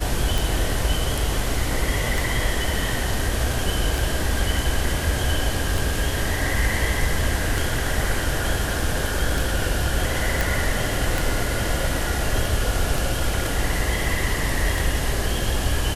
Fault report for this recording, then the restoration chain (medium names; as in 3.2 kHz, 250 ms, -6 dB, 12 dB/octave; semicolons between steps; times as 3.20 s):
tick 33 1/3 rpm
10.41 s: pop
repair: de-click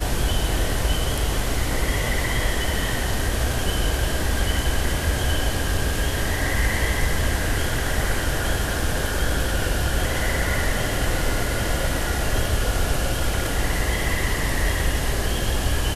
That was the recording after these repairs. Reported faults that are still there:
nothing left